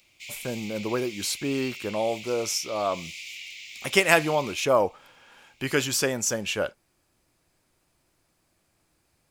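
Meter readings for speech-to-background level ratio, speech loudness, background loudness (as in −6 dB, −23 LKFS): 13.0 dB, −26.0 LKFS, −39.0 LKFS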